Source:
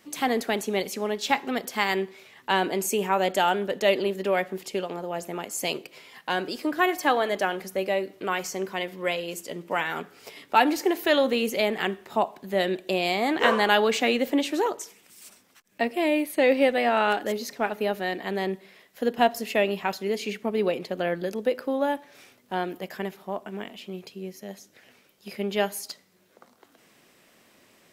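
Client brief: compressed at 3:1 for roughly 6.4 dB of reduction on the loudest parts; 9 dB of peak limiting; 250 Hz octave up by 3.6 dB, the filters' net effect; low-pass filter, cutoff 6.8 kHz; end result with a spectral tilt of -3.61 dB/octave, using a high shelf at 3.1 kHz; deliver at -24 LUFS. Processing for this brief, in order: low-pass 6.8 kHz; peaking EQ 250 Hz +4.5 dB; treble shelf 3.1 kHz +7.5 dB; compression 3:1, threshold -22 dBFS; trim +5 dB; peak limiter -11 dBFS

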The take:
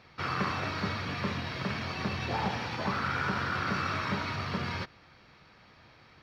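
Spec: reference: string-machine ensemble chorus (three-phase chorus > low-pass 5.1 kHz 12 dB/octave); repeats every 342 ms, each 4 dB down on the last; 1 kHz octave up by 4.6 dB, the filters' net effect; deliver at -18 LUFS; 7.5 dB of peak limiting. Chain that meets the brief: peaking EQ 1 kHz +6 dB; peak limiter -22.5 dBFS; feedback delay 342 ms, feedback 63%, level -4 dB; three-phase chorus; low-pass 5.1 kHz 12 dB/octave; trim +15.5 dB

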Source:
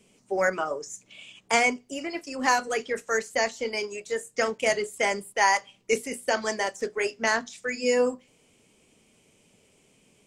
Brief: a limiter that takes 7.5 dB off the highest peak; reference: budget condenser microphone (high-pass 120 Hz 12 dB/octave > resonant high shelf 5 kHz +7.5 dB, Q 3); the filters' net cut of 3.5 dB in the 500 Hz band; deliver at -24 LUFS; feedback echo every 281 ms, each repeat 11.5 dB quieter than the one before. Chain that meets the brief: peaking EQ 500 Hz -4 dB; peak limiter -16 dBFS; high-pass 120 Hz 12 dB/octave; resonant high shelf 5 kHz +7.5 dB, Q 3; feedback delay 281 ms, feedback 27%, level -11.5 dB; trim +3 dB

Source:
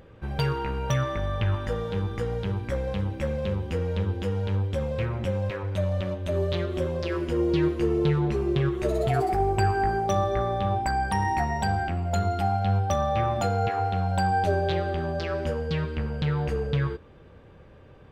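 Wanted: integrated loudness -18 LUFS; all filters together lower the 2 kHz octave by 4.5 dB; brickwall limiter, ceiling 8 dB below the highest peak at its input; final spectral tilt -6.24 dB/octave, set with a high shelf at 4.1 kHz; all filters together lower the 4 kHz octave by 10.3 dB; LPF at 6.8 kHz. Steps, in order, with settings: low-pass 6.8 kHz; peaking EQ 2 kHz -3 dB; peaking EQ 4 kHz -8 dB; treble shelf 4.1 kHz -7.5 dB; trim +11.5 dB; peak limiter -9 dBFS

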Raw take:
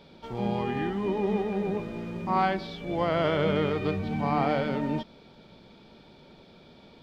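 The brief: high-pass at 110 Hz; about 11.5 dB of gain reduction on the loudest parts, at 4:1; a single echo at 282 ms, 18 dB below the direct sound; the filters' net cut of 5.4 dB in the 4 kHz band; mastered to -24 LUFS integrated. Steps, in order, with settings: high-pass 110 Hz; peaking EQ 4 kHz -7.5 dB; compression 4:1, threshold -35 dBFS; delay 282 ms -18 dB; trim +14 dB

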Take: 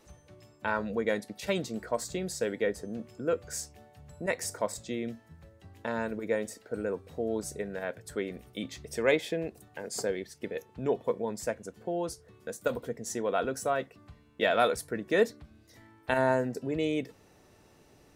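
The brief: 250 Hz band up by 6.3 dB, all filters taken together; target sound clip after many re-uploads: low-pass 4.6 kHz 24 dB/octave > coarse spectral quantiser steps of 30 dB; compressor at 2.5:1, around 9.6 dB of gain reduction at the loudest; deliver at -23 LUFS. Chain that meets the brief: peaking EQ 250 Hz +8 dB; compression 2.5:1, threshold -32 dBFS; low-pass 4.6 kHz 24 dB/octave; coarse spectral quantiser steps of 30 dB; trim +14 dB

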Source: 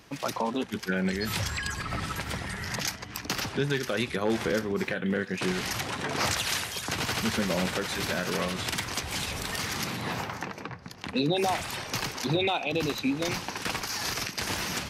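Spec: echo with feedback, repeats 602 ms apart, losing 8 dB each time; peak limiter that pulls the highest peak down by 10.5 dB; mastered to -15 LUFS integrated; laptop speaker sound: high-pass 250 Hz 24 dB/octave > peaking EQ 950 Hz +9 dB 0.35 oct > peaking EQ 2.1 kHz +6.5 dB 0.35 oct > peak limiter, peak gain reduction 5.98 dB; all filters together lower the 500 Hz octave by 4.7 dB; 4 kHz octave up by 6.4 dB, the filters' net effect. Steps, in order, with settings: peaking EQ 500 Hz -6.5 dB; peaking EQ 4 kHz +7.5 dB; peak limiter -21.5 dBFS; high-pass 250 Hz 24 dB/octave; peaking EQ 950 Hz +9 dB 0.35 oct; peaking EQ 2.1 kHz +6.5 dB 0.35 oct; feedback delay 602 ms, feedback 40%, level -8 dB; trim +16.5 dB; peak limiter -6 dBFS

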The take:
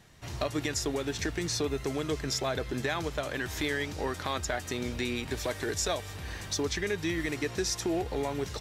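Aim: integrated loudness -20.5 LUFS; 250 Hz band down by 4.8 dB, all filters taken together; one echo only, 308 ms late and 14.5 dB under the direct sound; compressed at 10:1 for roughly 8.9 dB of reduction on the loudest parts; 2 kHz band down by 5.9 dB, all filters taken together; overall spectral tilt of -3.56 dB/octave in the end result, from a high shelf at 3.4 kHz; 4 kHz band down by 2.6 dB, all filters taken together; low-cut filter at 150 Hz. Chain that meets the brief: high-pass 150 Hz; peaking EQ 250 Hz -6 dB; peaking EQ 2 kHz -7.5 dB; treble shelf 3.4 kHz +7.5 dB; peaking EQ 4 kHz -8 dB; compression 10:1, threshold -35 dBFS; delay 308 ms -14.5 dB; trim +18.5 dB

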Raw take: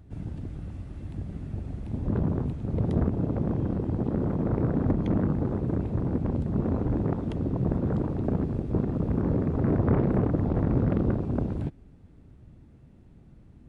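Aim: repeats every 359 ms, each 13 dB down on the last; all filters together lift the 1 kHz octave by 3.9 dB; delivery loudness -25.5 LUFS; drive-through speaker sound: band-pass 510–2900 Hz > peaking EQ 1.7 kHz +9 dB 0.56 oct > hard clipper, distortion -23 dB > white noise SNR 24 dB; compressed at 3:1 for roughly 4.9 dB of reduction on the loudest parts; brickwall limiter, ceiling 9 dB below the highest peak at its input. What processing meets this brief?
peaking EQ 1 kHz +4.5 dB; compression 3:1, threshold -26 dBFS; peak limiter -24 dBFS; band-pass 510–2900 Hz; peaking EQ 1.7 kHz +9 dB 0.56 oct; feedback delay 359 ms, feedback 22%, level -13 dB; hard clipper -31.5 dBFS; white noise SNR 24 dB; trim +18 dB

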